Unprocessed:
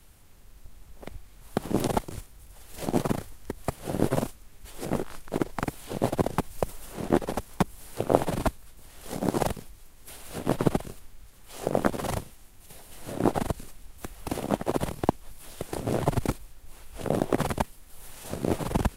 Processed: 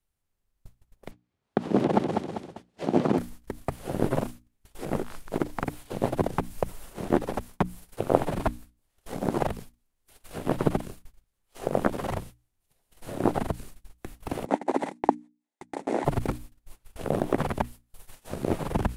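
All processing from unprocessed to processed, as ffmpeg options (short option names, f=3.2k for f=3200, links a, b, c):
-filter_complex "[0:a]asettb=1/sr,asplit=3[a][b][c];[a]atrim=end=1.114[d];[b]atrim=start=1.11:end=3.18,asetpts=PTS-STARTPTS,afade=t=in:d=0.004:c=qsin,afade=t=out:st=2.066:d=0.004:c=qsin,highpass=200,lowpass=4.8k,lowshelf=f=480:g=7.5,aecho=1:1:197|394|591|788|985:0.596|0.262|0.115|0.0507|0.0223,atrim=end_sample=91287[e];[c]atrim=start=3.176[f];[d][e]acrossfade=d=0.004:c1=hsin:c2=qsin[g];[g][f]acrossfade=d=0.004:c1=qsin:c2=hsin,asettb=1/sr,asplit=3[h][i][j];[h]atrim=end=14.454[k];[i]atrim=start=14.45:end=16.05,asetpts=PTS-STARTPTS,afade=t=in:d=0.004:c=qsin,afade=t=out:st=1.596:d=0.004:c=qsin,agate=range=-19dB:threshold=-33dB:ratio=16:release=100:detection=peak,highpass=f=230:w=0.5412,highpass=f=230:w=1.3066,equalizer=f=280:t=q:w=4:g=5,equalizer=f=850:t=q:w=4:g=8,equalizer=f=1.2k:t=q:w=4:g=-4,equalizer=f=2k:t=q:w=4:g=7,equalizer=f=3k:t=q:w=4:g=-5,equalizer=f=4.9k:t=q:w=4:g=-4,lowpass=f=8.5k:w=0.5412,lowpass=f=8.5k:w=1.3066[l];[j]atrim=start=16.046[m];[k][l]acrossfade=d=0.004:c1=hsin:c2=qsin[n];[n][m]acrossfade=d=0.004:c1=qsin:c2=hsin,agate=range=-26dB:threshold=-40dB:ratio=16:detection=peak,bandreject=f=60:t=h:w=6,bandreject=f=120:t=h:w=6,bandreject=f=180:t=h:w=6,bandreject=f=240:t=h:w=6,bandreject=f=300:t=h:w=6,acrossover=split=3000[o][p];[p]acompressor=threshold=-47dB:ratio=4:attack=1:release=60[q];[o][q]amix=inputs=2:normalize=0"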